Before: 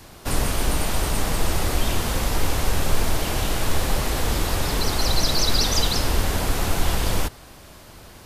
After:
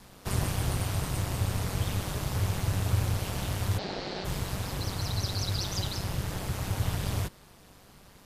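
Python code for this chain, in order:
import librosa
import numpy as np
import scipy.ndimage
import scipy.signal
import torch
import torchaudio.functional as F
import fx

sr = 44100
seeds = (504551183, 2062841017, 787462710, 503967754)

y = fx.rider(x, sr, range_db=10, speed_s=2.0)
y = fx.cabinet(y, sr, low_hz=150.0, low_slope=12, high_hz=5100.0, hz=(280.0, 690.0, 1000.0, 4400.0), db=(10, 7, -7, 8), at=(3.77, 4.24), fade=0.02)
y = y * np.sin(2.0 * np.pi * 98.0 * np.arange(len(y)) / sr)
y = y * librosa.db_to_amplitude(-8.0)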